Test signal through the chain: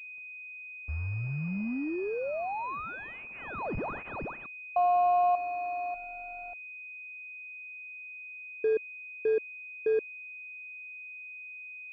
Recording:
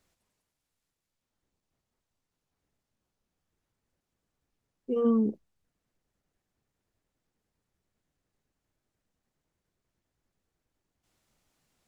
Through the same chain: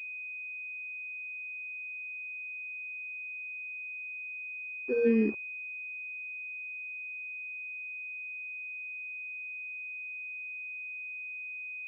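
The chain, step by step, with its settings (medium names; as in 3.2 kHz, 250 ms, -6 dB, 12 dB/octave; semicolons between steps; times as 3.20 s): resonances exaggerated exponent 3; word length cut 8-bit, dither none; class-D stage that switches slowly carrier 2.5 kHz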